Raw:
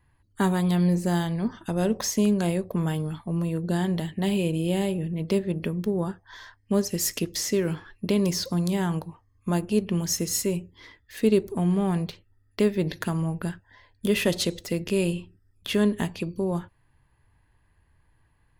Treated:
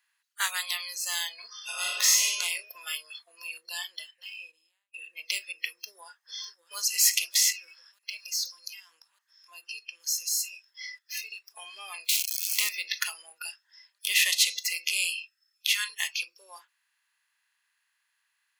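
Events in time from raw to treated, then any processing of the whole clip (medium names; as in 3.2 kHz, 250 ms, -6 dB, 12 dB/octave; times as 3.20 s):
1.47–2.25 s: reverb throw, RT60 1.3 s, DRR -3 dB
3.52–4.94 s: studio fade out
5.68–6.78 s: echo throw 600 ms, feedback 75%, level -12.5 dB
7.52–11.56 s: compression 2:1, threshold -42 dBFS
12.09–12.69 s: zero-crossing glitches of -23.5 dBFS
15.11–15.90 s: inverse Chebyshev high-pass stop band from 400 Hz, stop band 50 dB
whole clip: spectral levelling over time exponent 0.6; spectral noise reduction 25 dB; high-pass 1.4 kHz 24 dB/octave; trim +4 dB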